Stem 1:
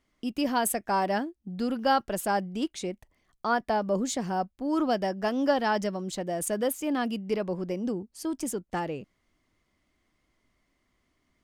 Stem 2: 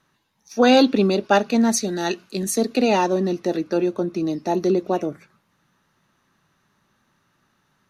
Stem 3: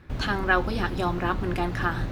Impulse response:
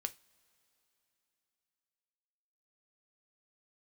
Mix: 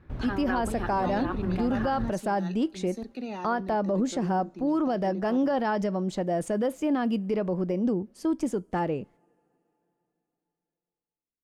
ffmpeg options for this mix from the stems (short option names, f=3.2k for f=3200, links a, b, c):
-filter_complex "[0:a]agate=range=-36dB:threshold=-56dB:ratio=16:detection=peak,volume=2.5dB,asplit=2[a][b];[b]volume=-6.5dB[c];[1:a]equalizer=f=540:w=0.88:g=-7.5,adelay=400,volume=-15dB,asplit=2[d][e];[e]volume=-10dB[f];[2:a]volume=-4dB[g];[3:a]atrim=start_sample=2205[h];[c][f]amix=inputs=2:normalize=0[i];[i][h]afir=irnorm=-1:irlink=0[j];[a][d][g][j]amix=inputs=4:normalize=0,acrossover=split=8100[k][l];[l]acompressor=threshold=-43dB:ratio=4:attack=1:release=60[m];[k][m]amix=inputs=2:normalize=0,highshelf=f=2.3k:g=-12,alimiter=limit=-18.5dB:level=0:latency=1:release=37"